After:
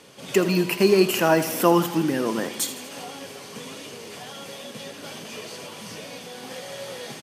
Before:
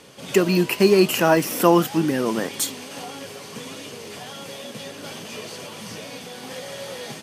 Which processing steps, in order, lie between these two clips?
bass shelf 74 Hz -7.5 dB; feedback delay 81 ms, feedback 54%, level -13 dB; trim -2 dB

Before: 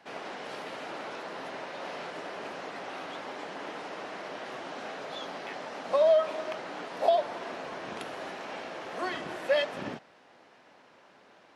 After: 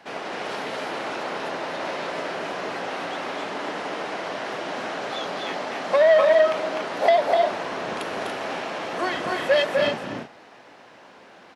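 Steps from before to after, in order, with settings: on a send: loudspeakers at several distances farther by 86 m -4 dB, 98 m -7 dB; on the sum: transformer saturation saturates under 1.2 kHz; trim +7.5 dB

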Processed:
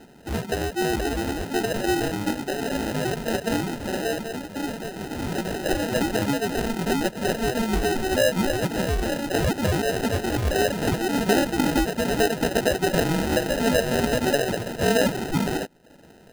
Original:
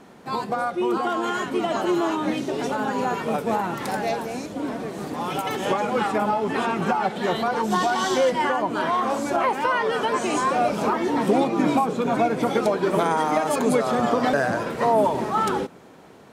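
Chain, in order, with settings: reverb removal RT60 0.58 s; sample-and-hold 39×

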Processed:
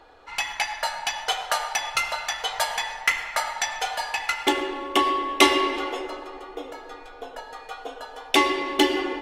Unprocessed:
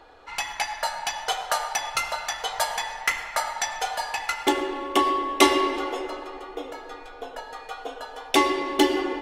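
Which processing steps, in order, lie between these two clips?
dynamic bell 2.6 kHz, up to +5 dB, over -39 dBFS, Q 0.98; trim -1 dB

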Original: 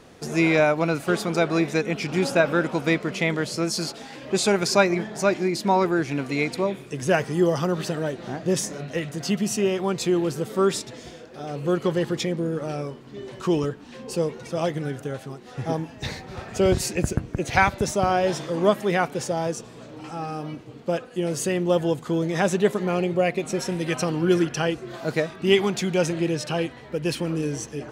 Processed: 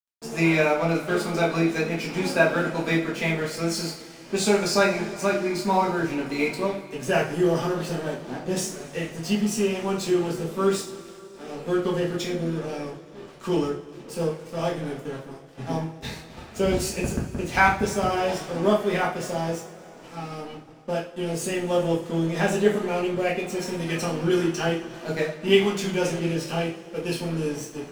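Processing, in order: crossover distortion -38.5 dBFS; two-slope reverb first 0.36 s, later 3.4 s, from -22 dB, DRR -4.5 dB; trim -5.5 dB

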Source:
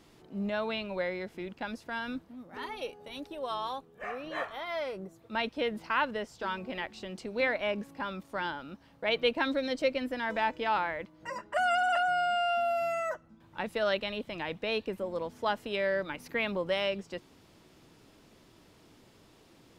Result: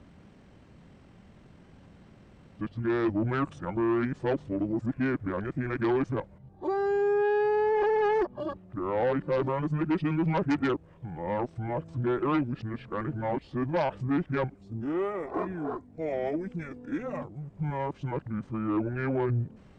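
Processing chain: reverse the whole clip; treble shelf 2.5 kHz -10.5 dB; Chebyshev shaper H 5 -12 dB, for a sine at -17.5 dBFS; pitch shift -9 st

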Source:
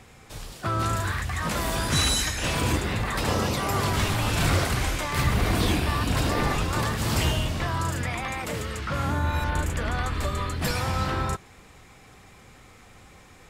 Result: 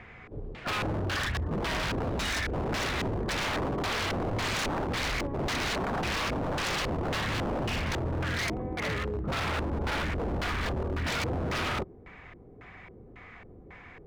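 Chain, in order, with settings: LFO low-pass square 1.9 Hz 420–2200 Hz; speed mistake 25 fps video run at 24 fps; wavefolder -25.5 dBFS

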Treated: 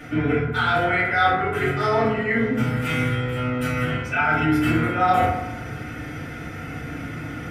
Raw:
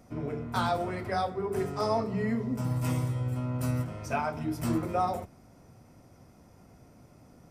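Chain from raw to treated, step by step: high-order bell 2.2 kHz +16 dB; band-stop 980 Hz, Q 6.1; reverse; compression 6:1, threshold -39 dBFS, peak gain reduction 20 dB; reverse; FDN reverb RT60 0.92 s, low-frequency decay 1.25×, high-frequency decay 0.35×, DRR -10 dB; trim +8.5 dB

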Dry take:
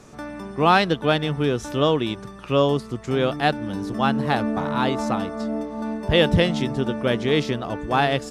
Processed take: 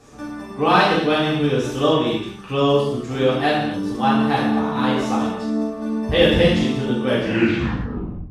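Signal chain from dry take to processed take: tape stop on the ending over 1.22 s; gated-style reverb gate 300 ms falling, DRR -8 dB; trim -6 dB

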